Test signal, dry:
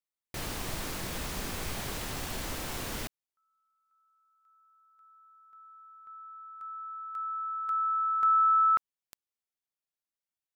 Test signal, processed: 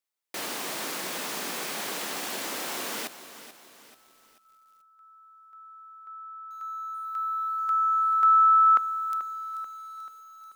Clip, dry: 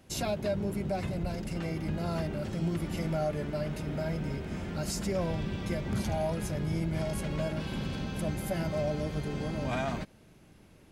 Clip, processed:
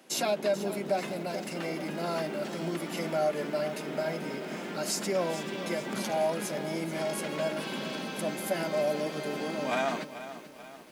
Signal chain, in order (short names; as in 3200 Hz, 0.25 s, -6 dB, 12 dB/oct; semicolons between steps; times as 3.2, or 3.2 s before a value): Bessel high-pass 320 Hz, order 8; lo-fi delay 0.436 s, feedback 55%, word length 9-bit, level -12.5 dB; gain +5 dB